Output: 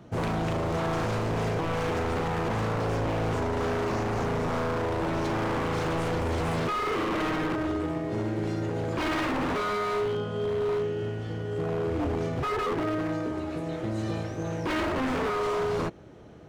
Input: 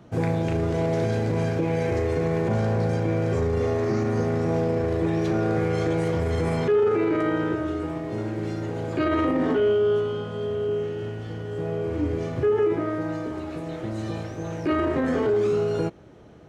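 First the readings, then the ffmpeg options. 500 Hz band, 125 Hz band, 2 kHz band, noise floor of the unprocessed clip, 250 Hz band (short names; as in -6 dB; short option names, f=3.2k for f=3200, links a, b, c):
-5.5 dB, -4.5 dB, +1.0 dB, -35 dBFS, -4.5 dB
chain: -af "aeval=exprs='0.0708*(abs(mod(val(0)/0.0708+3,4)-2)-1)':c=same"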